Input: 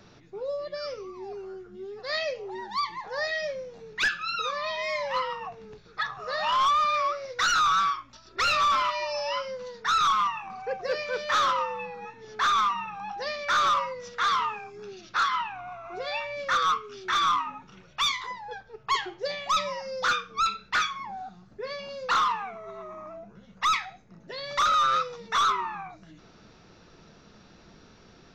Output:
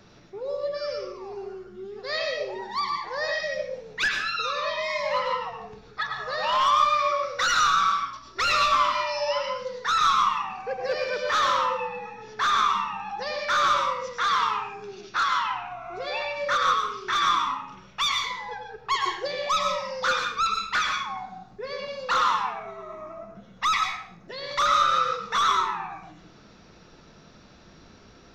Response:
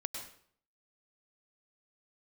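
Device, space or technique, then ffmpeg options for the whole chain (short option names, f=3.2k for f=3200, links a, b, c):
bathroom: -filter_complex "[1:a]atrim=start_sample=2205[a];[0:a][a]afir=irnorm=-1:irlink=0,volume=2dB"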